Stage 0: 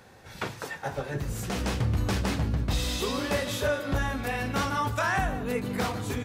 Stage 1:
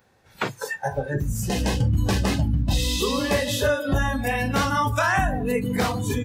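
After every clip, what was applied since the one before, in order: spectral noise reduction 18 dB; in parallel at +0.5 dB: compression, threshold -34 dBFS, peak gain reduction 11.5 dB; on the sum: trim +3 dB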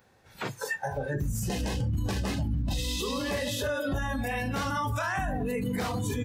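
peak limiter -21.5 dBFS, peak gain reduction 9.5 dB; trim -1 dB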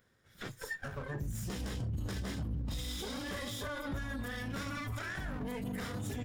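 comb filter that takes the minimum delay 0.57 ms; trim -7.5 dB

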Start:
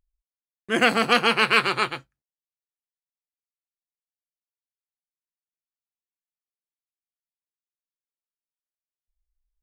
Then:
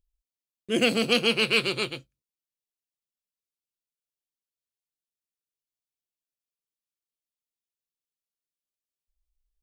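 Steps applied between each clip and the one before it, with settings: high-order bell 1.2 kHz -14.5 dB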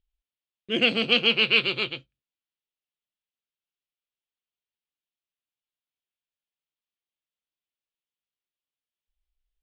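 resonant low-pass 3.2 kHz, resonance Q 2.3; trim -2.5 dB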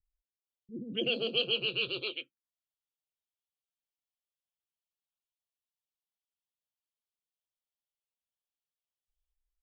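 resonances exaggerated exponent 1.5; touch-sensitive phaser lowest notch 300 Hz, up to 2.1 kHz, full sweep at -22 dBFS; bands offset in time lows, highs 250 ms, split 280 Hz; trim -4 dB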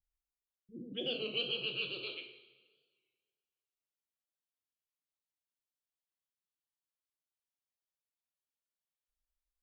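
reverberation, pre-delay 3 ms, DRR 3 dB; warped record 33 1/3 rpm, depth 100 cents; trim -7 dB

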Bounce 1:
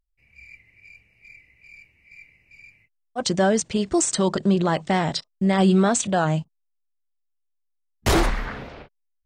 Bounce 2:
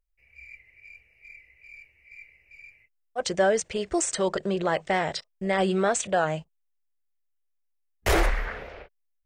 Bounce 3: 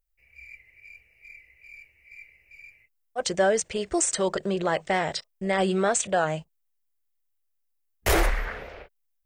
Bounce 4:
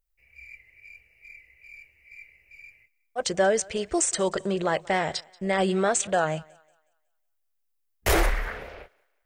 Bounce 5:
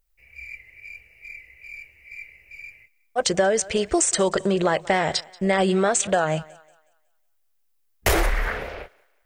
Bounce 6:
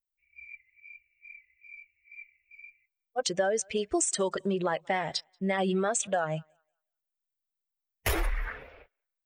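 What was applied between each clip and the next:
graphic EQ 125/250/500/1000/2000/4000/8000 Hz -10/-12/+4/-5/+3/-6/-4 dB
treble shelf 10 kHz +10 dB
thinning echo 183 ms, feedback 37%, high-pass 380 Hz, level -24 dB
compression, threshold -24 dBFS, peak gain reduction 7 dB; trim +7.5 dB
expander on every frequency bin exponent 1.5; trim -5.5 dB

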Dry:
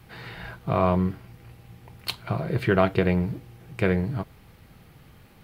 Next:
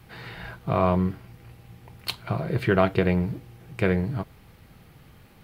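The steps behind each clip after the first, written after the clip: no audible change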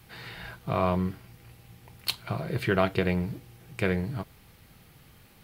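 treble shelf 2.7 kHz +8.5 dB; trim -4.5 dB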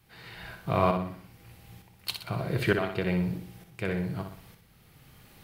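tremolo saw up 1.1 Hz, depth 75%; on a send: flutter echo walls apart 10.5 m, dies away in 0.54 s; on the sum: trim +2 dB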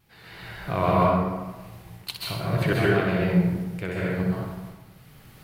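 vibrato 3.3 Hz 63 cents; plate-style reverb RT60 1.2 s, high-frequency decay 0.5×, pre-delay 120 ms, DRR -5 dB; trim -1 dB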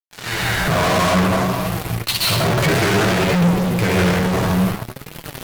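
fuzz box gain 43 dB, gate -46 dBFS; flange 0.58 Hz, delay 5.7 ms, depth 8 ms, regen +54%; trim +2 dB

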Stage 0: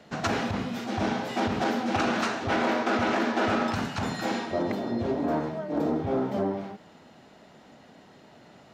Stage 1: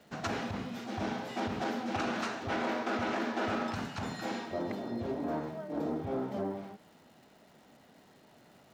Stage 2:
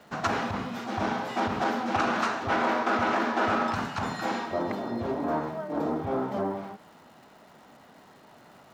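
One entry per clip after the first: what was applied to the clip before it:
crackle 570 per s -49 dBFS; trim -7.5 dB
peaking EQ 1.1 kHz +7.5 dB 1.2 oct; trim +4 dB

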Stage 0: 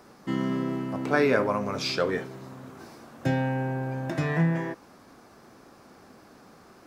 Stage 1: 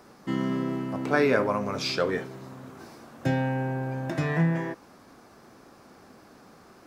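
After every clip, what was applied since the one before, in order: no audible change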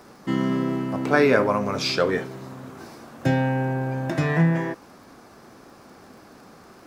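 crackle 29 per s -48 dBFS; trim +4.5 dB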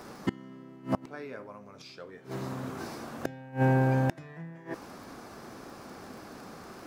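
inverted gate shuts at -17 dBFS, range -26 dB; trim +2 dB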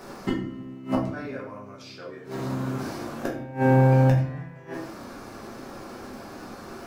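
simulated room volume 73 m³, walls mixed, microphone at 1.1 m

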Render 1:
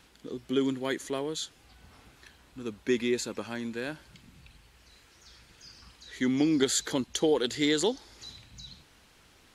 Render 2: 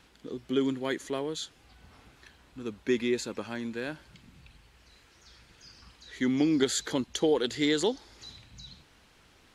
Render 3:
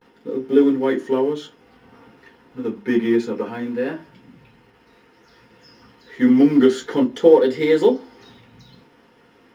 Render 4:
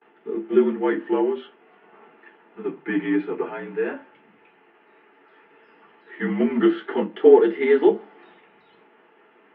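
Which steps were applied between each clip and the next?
treble shelf 7 kHz -6.5 dB
vibrato 0.57 Hz 82 cents; in parallel at -6.5 dB: companded quantiser 4-bit; on the sum: reverberation RT60 0.25 s, pre-delay 3 ms, DRR -4.5 dB; trim -12.5 dB
mistuned SSB -53 Hz 360–2900 Hz

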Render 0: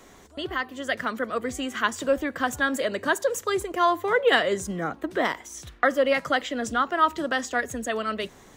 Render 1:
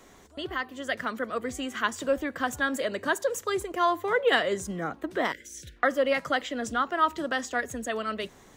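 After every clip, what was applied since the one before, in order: spectral selection erased 5.32–5.77 s, 600–1400 Hz; trim -3 dB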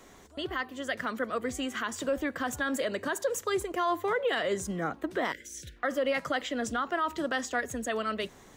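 peak limiter -20.5 dBFS, peak gain reduction 10 dB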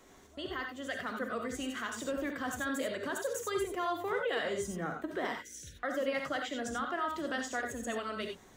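gated-style reverb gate 110 ms rising, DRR 3 dB; trim -6 dB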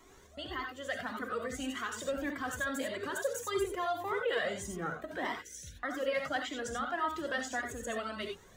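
Shepard-style flanger rising 1.7 Hz; trim +4.5 dB

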